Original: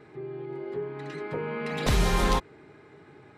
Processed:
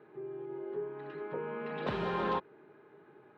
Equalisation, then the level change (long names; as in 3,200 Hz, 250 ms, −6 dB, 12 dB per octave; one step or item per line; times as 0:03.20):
high-frequency loss of the air 480 metres
loudspeaker in its box 280–8,500 Hz, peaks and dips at 280 Hz −7 dB, 480 Hz −3 dB, 720 Hz −6 dB, 1,200 Hz −3 dB, 2,100 Hz −9 dB
high-shelf EQ 6,000 Hz −7 dB
0.0 dB